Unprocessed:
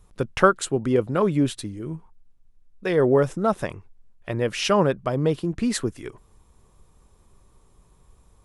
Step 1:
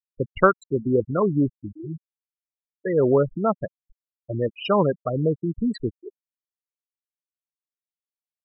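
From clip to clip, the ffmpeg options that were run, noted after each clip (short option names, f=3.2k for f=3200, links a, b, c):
-af "afftfilt=real='re*gte(hypot(re,im),0.158)':imag='im*gte(hypot(re,im),0.158)':win_size=1024:overlap=0.75"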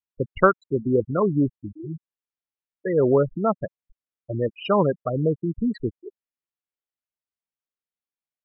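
-af "lowpass=3k"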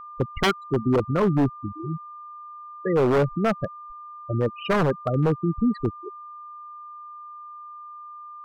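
-af "aeval=exprs='val(0)+0.0126*sin(2*PI*1200*n/s)':c=same,bass=f=250:g=4,treble=f=4k:g=-4,aeval=exprs='0.2*(abs(mod(val(0)/0.2+3,4)-2)-1)':c=same"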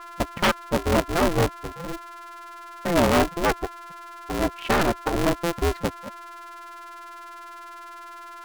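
-filter_complex "[0:a]bass=f=250:g=-4,treble=f=4k:g=-4,asplit=2[a][b];[b]acrusher=bits=2:mix=0:aa=0.5,volume=-10.5dB[c];[a][c]amix=inputs=2:normalize=0,aeval=exprs='val(0)*sgn(sin(2*PI*170*n/s))':c=same"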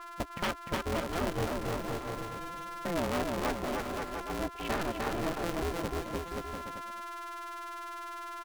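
-filter_complex "[0:a]asplit=2[a][b];[b]aecho=0:1:300|525|693.8|820.3|915.2:0.631|0.398|0.251|0.158|0.1[c];[a][c]amix=inputs=2:normalize=0,acompressor=threshold=-31dB:ratio=2,volume=-4.5dB"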